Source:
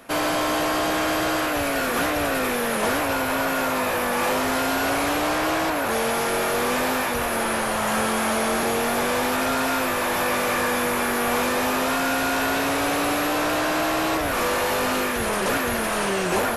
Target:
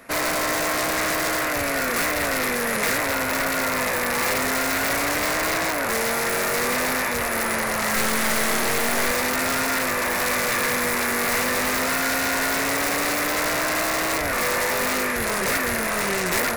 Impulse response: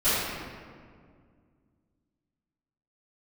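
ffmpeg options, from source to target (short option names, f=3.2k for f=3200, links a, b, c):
-filter_complex "[0:a]aeval=exprs='(mod(6.31*val(0)+1,2)-1)/6.31':c=same,equalizer=f=315:t=o:w=0.33:g=-4,equalizer=f=800:t=o:w=0.33:g=-4,equalizer=f=2k:t=o:w=0.33:g=7,equalizer=f=3.15k:t=o:w=0.33:g=-7,asettb=1/sr,asplit=3[a][b][c];[a]atrim=end=7.964[d];[b]atrim=start=7.96:end=9.11,asetpts=PTS-STARTPTS,afade=t=in:d=0.004:c=qsin,afade=t=out:st=1.146:d=0.004:c=qsin,aeval=exprs='0.224*(cos(1*acos(clip(val(0)/0.224,-1,1)))-cos(1*PI/2))+0.0447*(cos(4*acos(clip(val(0)/0.224,-1,1)))-cos(4*PI/2))+0.0282*(cos(6*acos(clip(val(0)/0.224,-1,1)))-cos(6*PI/2))+0.0355*(cos(8*acos(clip(val(0)/0.224,-1,1)))-cos(8*PI/2))':c=same[e];[c]atrim=start=9.106[f];[d][e]acrossfade=d=0.004:c1=hsin:c2=qsin[g];[g][f]acrossfade=d=0.004:c1=qsin:c2=hsin"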